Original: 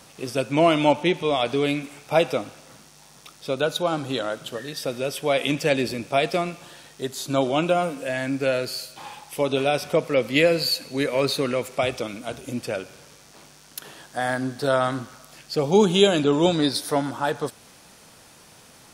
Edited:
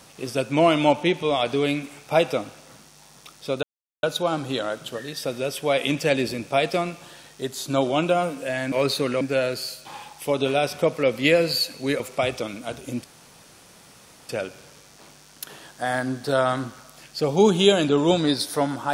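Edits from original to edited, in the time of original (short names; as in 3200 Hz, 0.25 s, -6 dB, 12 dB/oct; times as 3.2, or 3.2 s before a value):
3.63 insert silence 0.40 s
11.11–11.6 move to 8.32
12.64 insert room tone 1.25 s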